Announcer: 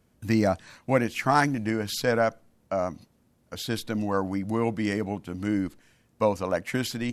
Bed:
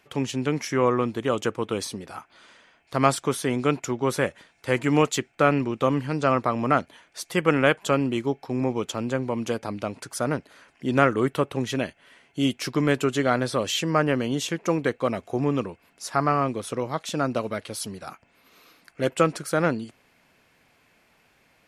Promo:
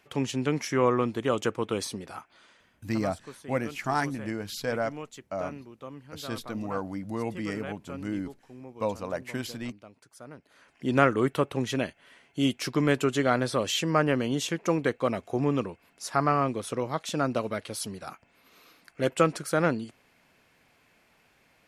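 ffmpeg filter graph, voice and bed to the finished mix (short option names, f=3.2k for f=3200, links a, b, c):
-filter_complex "[0:a]adelay=2600,volume=-6dB[a];[1:a]volume=16dB,afade=t=out:st=2.07:d=0.96:silence=0.125893,afade=t=in:st=10.36:d=0.45:silence=0.125893[b];[a][b]amix=inputs=2:normalize=0"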